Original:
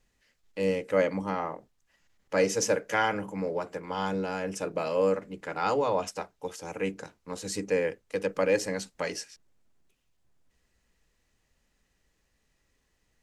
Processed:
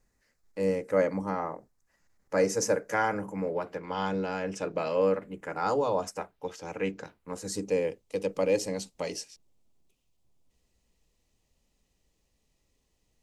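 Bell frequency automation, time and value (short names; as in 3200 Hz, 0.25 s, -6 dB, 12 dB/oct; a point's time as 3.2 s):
bell -12.5 dB 0.78 oct
3.24 s 3100 Hz
3.87 s 11000 Hz
4.9 s 11000 Hz
5.91 s 1800 Hz
6.49 s 10000 Hz
7 s 10000 Hz
7.7 s 1600 Hz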